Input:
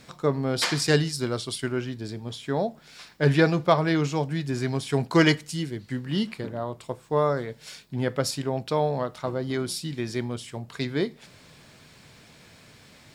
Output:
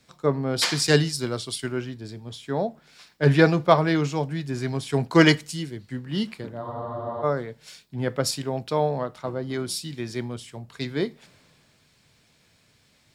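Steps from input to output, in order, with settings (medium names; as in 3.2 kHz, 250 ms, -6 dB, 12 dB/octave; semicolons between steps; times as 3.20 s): spectral freeze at 6.64 s, 0.59 s; three bands expanded up and down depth 40%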